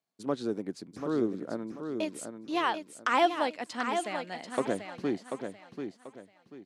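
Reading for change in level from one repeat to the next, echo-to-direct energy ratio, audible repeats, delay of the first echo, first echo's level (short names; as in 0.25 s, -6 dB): -10.5 dB, -6.5 dB, 3, 0.738 s, -7.0 dB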